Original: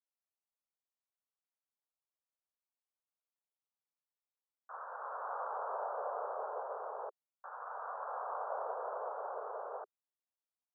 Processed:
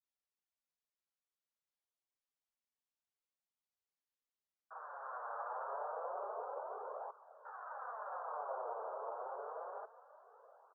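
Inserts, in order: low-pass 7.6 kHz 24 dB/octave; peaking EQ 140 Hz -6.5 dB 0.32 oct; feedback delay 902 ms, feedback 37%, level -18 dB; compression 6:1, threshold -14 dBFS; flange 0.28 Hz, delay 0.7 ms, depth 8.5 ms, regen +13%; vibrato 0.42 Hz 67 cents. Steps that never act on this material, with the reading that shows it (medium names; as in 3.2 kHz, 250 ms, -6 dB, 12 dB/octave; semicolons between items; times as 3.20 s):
low-pass 7.6 kHz: input has nothing above 1.7 kHz; peaking EQ 140 Hz: input has nothing below 340 Hz; compression, threshold -14 dBFS: peak at its input -27.5 dBFS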